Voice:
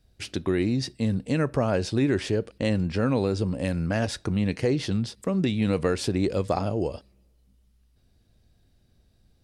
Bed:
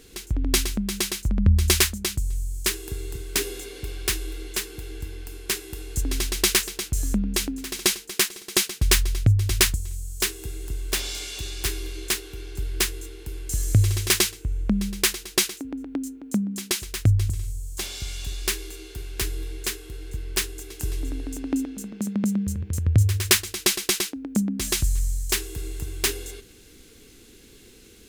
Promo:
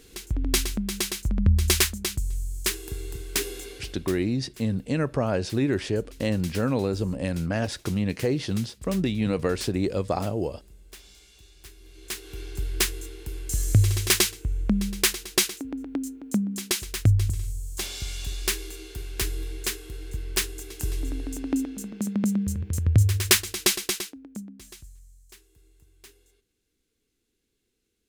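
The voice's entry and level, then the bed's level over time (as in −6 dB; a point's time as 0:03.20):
3.60 s, −1.0 dB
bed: 0:03.72 −2 dB
0:04.26 −21 dB
0:11.77 −21 dB
0:12.36 −0.5 dB
0:23.71 −0.5 dB
0:25.00 −27 dB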